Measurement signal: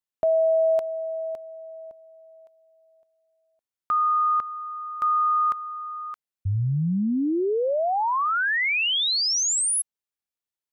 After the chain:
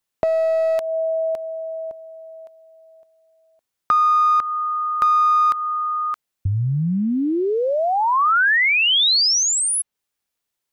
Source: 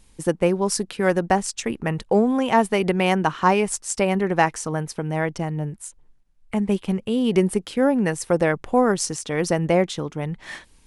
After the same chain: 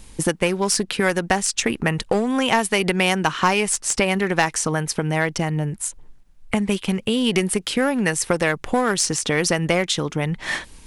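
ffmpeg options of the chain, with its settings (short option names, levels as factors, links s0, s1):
-filter_complex "[0:a]asplit=2[s0][s1];[s1]aeval=exprs='clip(val(0),-1,0.0944)':c=same,volume=0.501[s2];[s0][s2]amix=inputs=2:normalize=0,acrossover=split=1500|4000[s3][s4][s5];[s3]acompressor=threshold=0.0398:ratio=4[s6];[s4]acompressor=threshold=0.0355:ratio=4[s7];[s5]acompressor=threshold=0.0355:ratio=4[s8];[s6][s7][s8]amix=inputs=3:normalize=0,volume=2.37"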